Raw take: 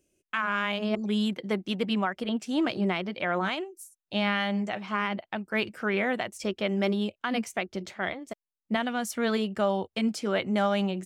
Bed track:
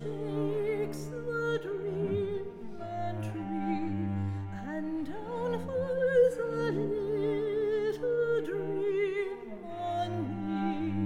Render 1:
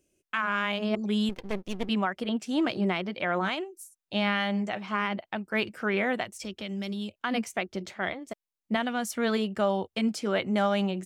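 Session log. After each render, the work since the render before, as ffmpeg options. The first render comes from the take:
-filter_complex "[0:a]asettb=1/sr,asplit=3[s0][s1][s2];[s0]atrim=end=1.294[s3];[s1]atrim=start=1.29:end=1.89,asetpts=PTS-STARTPTS,afade=t=in:d=0.004:c=qsin,afade=t=out:st=0.596:d=0.004:c=qsin,aeval=exprs='max(val(0),0)':c=same[s4];[s2]atrim=start=1.886[s5];[s3][s4]acrossfade=d=0.004:c1=hsin:c2=qsin[s6];[s6][s5]acrossfade=d=0.004:c1=qsin:c2=hsin,asettb=1/sr,asplit=3[s7][s8][s9];[s7]atrim=end=6.244[s10];[s8]atrim=start=6.24:end=7.15,asetpts=PTS-STARTPTS,afade=t=in:d=0.004:c=qsin,afade=t=out:st=0.906:d=0.004:c=qsin,acrossover=split=180|3000[s11][s12][s13];[s12]acompressor=threshold=0.0112:ratio=6:attack=3.2:release=140:knee=2.83:detection=peak[s14];[s11][s14][s13]amix=inputs=3:normalize=0[s15];[s9]atrim=start=7.146[s16];[s10][s15]acrossfade=d=0.004:c1=hsin:c2=qsin[s17];[s17][s16]acrossfade=d=0.004:c1=qsin:c2=hsin"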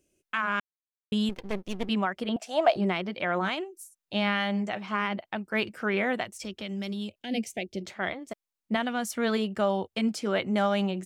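-filter_complex "[0:a]asettb=1/sr,asplit=3[s0][s1][s2];[s0]atrim=end=2.364[s3];[s1]atrim=start=2.36:end=2.76,asetpts=PTS-STARTPTS,afade=t=in:d=0.004:c=qsin,afade=t=out:st=0.396:d=0.004:c=qsin,highpass=f=670:t=q:w=7.5[s4];[s2]atrim=start=2.756[s5];[s3][s4]acrossfade=d=0.004:c1=hsin:c2=qsin[s6];[s6][s5]acrossfade=d=0.004:c1=qsin:c2=hsin,asplit=3[s7][s8][s9];[s7]afade=t=out:st=7.2:d=0.02[s10];[s8]asuperstop=centerf=1200:order=4:qfactor=0.72,afade=t=in:st=7.2:d=0.02,afade=t=out:st=7.8:d=0.02[s11];[s9]afade=t=in:st=7.8:d=0.02[s12];[s10][s11][s12]amix=inputs=3:normalize=0,asplit=3[s13][s14][s15];[s13]atrim=end=0.6,asetpts=PTS-STARTPTS,afade=t=out:st=0.596:d=0.004:c=hsin[s16];[s14]atrim=start=0.6:end=1.12,asetpts=PTS-STARTPTS,volume=0[s17];[s15]atrim=start=1.12,asetpts=PTS-STARTPTS,afade=t=in:d=0.004:c=hsin[s18];[s16][s17][s18]concat=n=3:v=0:a=1"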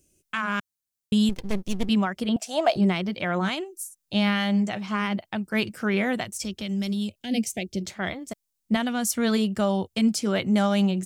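-af "bass=f=250:g=10,treble=f=4000:g=11"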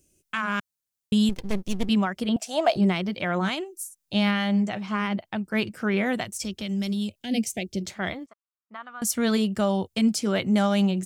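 -filter_complex "[0:a]asettb=1/sr,asplit=3[s0][s1][s2];[s0]atrim=end=4.314[s3];[s1]atrim=start=4.31:end=6.06,asetpts=PTS-STARTPTS,afade=t=in:d=0.004:c=qsin,afade=t=out:st=1.746:d=0.004:c=qsin,highshelf=f=3900:g=-5[s4];[s2]atrim=start=6.056[s5];[s3][s4]acrossfade=d=0.004:c1=hsin:c2=qsin[s6];[s6][s5]acrossfade=d=0.004:c1=qsin:c2=hsin,asettb=1/sr,asplit=3[s7][s8][s9];[s7]atrim=end=8.264[s10];[s8]atrim=start=8.26:end=9.02,asetpts=PTS-STARTPTS,afade=t=in:d=0.004:c=qsin,afade=t=out:st=0.756:d=0.004:c=qsin,bandpass=f=1200:t=q:w=4.7[s11];[s9]atrim=start=9.016[s12];[s10][s11]acrossfade=d=0.004:c1=hsin:c2=qsin[s13];[s13][s12]acrossfade=d=0.004:c1=qsin:c2=hsin"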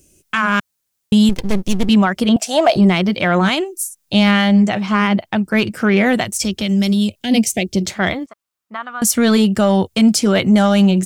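-filter_complex "[0:a]asplit=2[s0][s1];[s1]alimiter=limit=0.126:level=0:latency=1,volume=0.891[s2];[s0][s2]amix=inputs=2:normalize=0,acontrast=73"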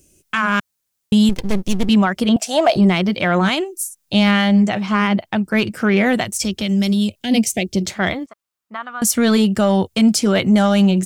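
-af "volume=0.841"

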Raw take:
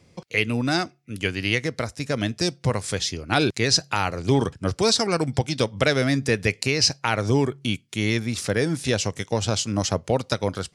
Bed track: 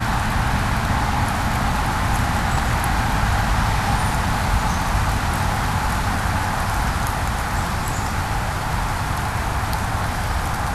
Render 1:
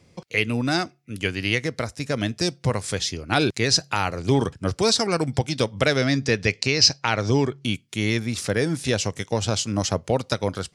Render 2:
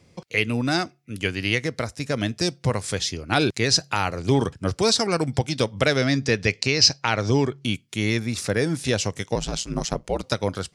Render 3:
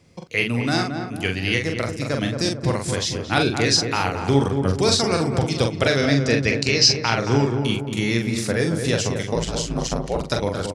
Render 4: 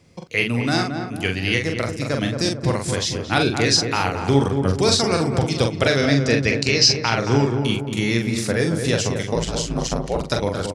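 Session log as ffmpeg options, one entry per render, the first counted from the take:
-filter_complex "[0:a]asettb=1/sr,asplit=3[s0][s1][s2];[s0]atrim=end=5.974[s3];[s1]atrim=start=5.97:end=7.64,asetpts=PTS-STARTPTS,afade=t=in:d=0.004:c=qsin,afade=t=out:st=1.666:d=0.004:c=qsin,lowpass=f=5500:t=q:w=1.5[s4];[s2]atrim=start=7.636[s5];[s3][s4]acrossfade=d=0.004:c1=hsin:c2=qsin[s6];[s6][s5]acrossfade=d=0.004:c1=qsin:c2=hsin"
-filter_complex "[0:a]asettb=1/sr,asplit=3[s0][s1][s2];[s0]atrim=end=8.024[s3];[s1]atrim=start=8.02:end=8.64,asetpts=PTS-STARTPTS,afade=t=in:d=0.004:c=qsin,afade=t=out:st=0.616:d=0.004:c=qsin,bandreject=f=3100:w=12[s4];[s2]atrim=start=8.636[s5];[s3][s4]acrossfade=d=0.004:c1=hsin:c2=qsin[s6];[s6][s5]acrossfade=d=0.004:c1=qsin:c2=hsin,asettb=1/sr,asplit=3[s7][s8][s9];[s7]atrim=end=9.354[s10];[s8]atrim=start=9.35:end=10.23,asetpts=PTS-STARTPTS,afade=t=in:d=0.004:c=qsin,afade=t=out:st=0.876:d=0.004:c=qsin,aeval=exprs='val(0)*sin(2*PI*60*n/s)':c=same[s11];[s9]atrim=start=10.226[s12];[s10][s11]acrossfade=d=0.004:c1=hsin:c2=qsin[s13];[s13][s12]acrossfade=d=0.004:c1=qsin:c2=hsin"
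-filter_complex "[0:a]asplit=2[s0][s1];[s1]adelay=43,volume=0.596[s2];[s0][s2]amix=inputs=2:normalize=0,asplit=2[s3][s4];[s4]adelay=223,lowpass=f=1300:p=1,volume=0.531,asplit=2[s5][s6];[s6]adelay=223,lowpass=f=1300:p=1,volume=0.53,asplit=2[s7][s8];[s8]adelay=223,lowpass=f=1300:p=1,volume=0.53,asplit=2[s9][s10];[s10]adelay=223,lowpass=f=1300:p=1,volume=0.53,asplit=2[s11][s12];[s12]adelay=223,lowpass=f=1300:p=1,volume=0.53,asplit=2[s13][s14];[s14]adelay=223,lowpass=f=1300:p=1,volume=0.53,asplit=2[s15][s16];[s16]adelay=223,lowpass=f=1300:p=1,volume=0.53[s17];[s5][s7][s9][s11][s13][s15][s17]amix=inputs=7:normalize=0[s18];[s3][s18]amix=inputs=2:normalize=0"
-af "volume=1.12,alimiter=limit=0.708:level=0:latency=1"

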